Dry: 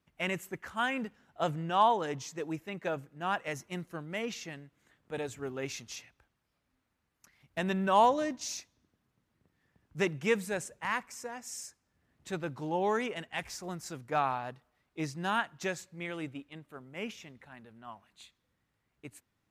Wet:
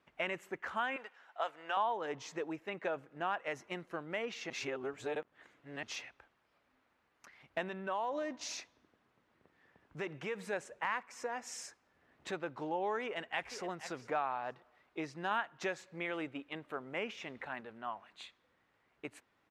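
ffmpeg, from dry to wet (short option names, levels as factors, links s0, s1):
-filter_complex "[0:a]asettb=1/sr,asplit=3[s0][s1][s2];[s0]atrim=end=0.964[s3];[s1]atrim=start=0.96:end=1.77,asetpts=PTS-STARTPTS,afade=t=in:d=0.004:c=qsin,afade=t=out:st=0.806:d=0.004:c=qsin,highpass=780[s4];[s2]atrim=start=1.766[s5];[s3][s4]acrossfade=d=0.004:c1=hsin:c2=qsin[s6];[s6][s5]acrossfade=d=0.004:c1=qsin:c2=hsin,asettb=1/sr,asplit=3[s7][s8][s9];[s7]atrim=end=7.684[s10];[s8]atrim=start=7.68:end=10.53,asetpts=PTS-STARTPTS,afade=t=in:d=0.004:c=qsin,afade=t=out:st=2.846:d=0.004:c=qsin,acompressor=threshold=0.0282:ratio=6:attack=3.2:release=140:knee=1:detection=peak[s11];[s9]atrim=start=10.526[s12];[s10][s11]acrossfade=d=0.004:c1=hsin:c2=qsin[s13];[s13][s12]acrossfade=d=0.004:c1=qsin:c2=hsin,asplit=2[s14][s15];[s15]afade=t=in:st=13.04:d=0.01,afade=t=out:st=13.68:d=0.01,aecho=0:1:470|940:0.16788|0.0335761[s16];[s14][s16]amix=inputs=2:normalize=0,asplit=5[s17][s18][s19][s20][s21];[s17]atrim=end=4.502[s22];[s18]atrim=start=4.498:end=5.832,asetpts=PTS-STARTPTS,areverse[s23];[s19]atrim=start=5.828:end=15.312[s24];[s20]atrim=start=15.308:end=17.612,asetpts=PTS-STARTPTS,volume=1.5[s25];[s21]atrim=start=17.608[s26];[s22][s23]acrossfade=d=0.004:c1=hsin:c2=hsin[s27];[s27][s24]acrossfade=d=0.004:c1=hsin:c2=hsin[s28];[s28][s25]acrossfade=d=0.004:c1=hsin:c2=hsin[s29];[s29][s26]acrossfade=d=0.004:c1=hsin:c2=hsin,aemphasis=mode=reproduction:type=50fm,acompressor=threshold=0.00562:ratio=3,bass=f=250:g=-15,treble=f=4000:g=-5,volume=2.82"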